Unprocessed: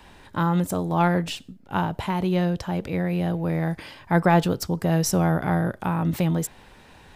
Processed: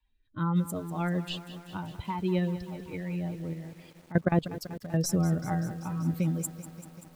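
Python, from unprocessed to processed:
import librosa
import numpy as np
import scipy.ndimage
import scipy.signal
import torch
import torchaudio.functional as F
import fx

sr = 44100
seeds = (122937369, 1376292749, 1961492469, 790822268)

y = fx.bin_expand(x, sr, power=2.0)
y = fx.level_steps(y, sr, step_db=19, at=(3.53, 4.94))
y = fx.rotary(y, sr, hz=1.2)
y = fx.echo_crushed(y, sr, ms=193, feedback_pct=80, bits=8, wet_db=-14.0)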